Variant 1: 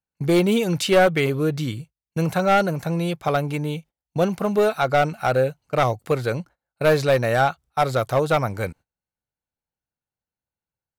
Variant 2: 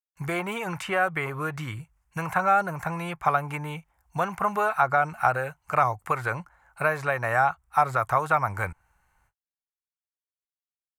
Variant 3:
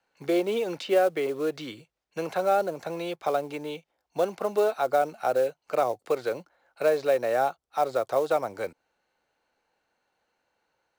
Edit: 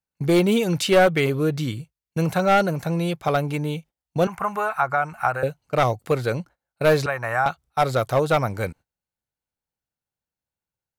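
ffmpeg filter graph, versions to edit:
ffmpeg -i take0.wav -i take1.wav -filter_complex "[1:a]asplit=2[link_01][link_02];[0:a]asplit=3[link_03][link_04][link_05];[link_03]atrim=end=4.272[link_06];[link_01]atrim=start=4.268:end=5.432[link_07];[link_04]atrim=start=5.428:end=7.062[link_08];[link_02]atrim=start=7.058:end=7.462[link_09];[link_05]atrim=start=7.458[link_10];[link_06][link_07]acrossfade=duration=0.004:curve1=hsin:curve2=hsin[link_11];[link_11][link_08]acrossfade=duration=0.004:curve1=hsin:curve2=hsin[link_12];[link_12][link_09]acrossfade=duration=0.004:curve1=hsin:curve2=hsin[link_13];[link_13][link_10]acrossfade=duration=0.004:curve1=hsin:curve2=hsin" out.wav

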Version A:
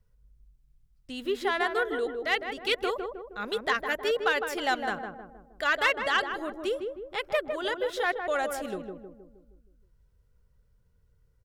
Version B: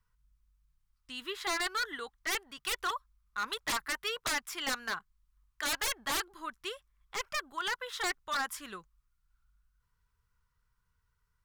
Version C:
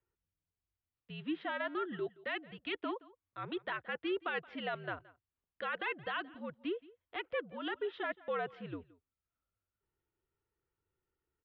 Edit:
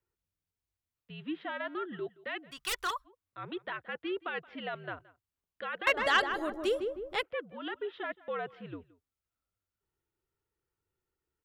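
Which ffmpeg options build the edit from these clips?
ffmpeg -i take0.wav -i take1.wav -i take2.wav -filter_complex "[2:a]asplit=3[link_01][link_02][link_03];[link_01]atrim=end=2.53[link_04];[1:a]atrim=start=2.49:end=3.08[link_05];[link_02]atrim=start=3.04:end=5.872[link_06];[0:a]atrim=start=5.868:end=7.232[link_07];[link_03]atrim=start=7.228[link_08];[link_04][link_05]acrossfade=duration=0.04:curve1=tri:curve2=tri[link_09];[link_09][link_06]acrossfade=duration=0.04:curve1=tri:curve2=tri[link_10];[link_10][link_07]acrossfade=duration=0.004:curve1=hsin:curve2=hsin[link_11];[link_11][link_08]acrossfade=duration=0.004:curve1=hsin:curve2=hsin" out.wav

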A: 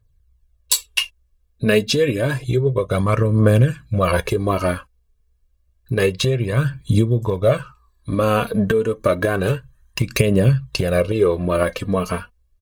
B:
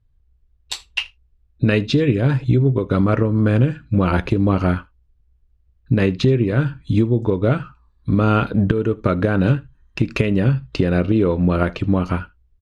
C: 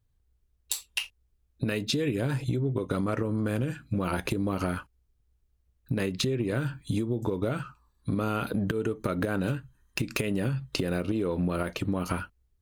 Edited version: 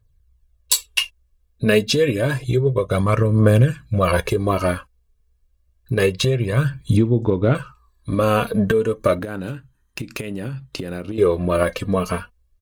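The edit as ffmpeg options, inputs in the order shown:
ffmpeg -i take0.wav -i take1.wav -i take2.wav -filter_complex "[0:a]asplit=3[link_01][link_02][link_03];[link_01]atrim=end=6.972[link_04];[1:a]atrim=start=6.968:end=7.552[link_05];[link_02]atrim=start=7.548:end=9.192[link_06];[2:a]atrim=start=9.188:end=11.182[link_07];[link_03]atrim=start=11.178[link_08];[link_04][link_05]acrossfade=duration=0.004:curve1=hsin:curve2=hsin[link_09];[link_09][link_06]acrossfade=duration=0.004:curve1=hsin:curve2=hsin[link_10];[link_10][link_07]acrossfade=duration=0.004:curve1=hsin:curve2=hsin[link_11];[link_11][link_08]acrossfade=duration=0.004:curve1=hsin:curve2=hsin" out.wav

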